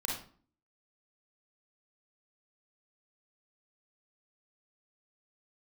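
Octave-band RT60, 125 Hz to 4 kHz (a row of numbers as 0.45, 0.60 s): 0.55, 0.65, 0.45, 0.45, 0.35, 0.35 s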